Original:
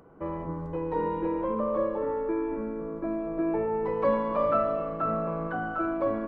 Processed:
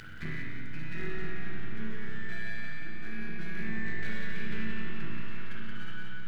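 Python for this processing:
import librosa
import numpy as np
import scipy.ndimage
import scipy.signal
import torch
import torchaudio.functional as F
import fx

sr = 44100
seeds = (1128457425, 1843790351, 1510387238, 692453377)

p1 = fx.fade_out_tail(x, sr, length_s=0.95)
p2 = scipy.signal.sosfilt(scipy.signal.butter(2, 120.0, 'highpass', fs=sr, output='sos'), p1)
p3 = fx.spec_gate(p2, sr, threshold_db=-10, keep='weak')
p4 = scipy.signal.sosfilt(scipy.signal.cheby1(5, 1.0, [210.0, 1500.0], 'bandstop', fs=sr, output='sos'), p3)
p5 = np.maximum(p4, 0.0)
p6 = p5 + fx.echo_feedback(p5, sr, ms=176, feedback_pct=53, wet_db=-4.5, dry=0)
p7 = fx.rev_spring(p6, sr, rt60_s=1.6, pass_ms=(32, 45), chirp_ms=35, drr_db=-3.5)
p8 = fx.env_flatten(p7, sr, amount_pct=50)
y = p8 * 10.0 ** (4.0 / 20.0)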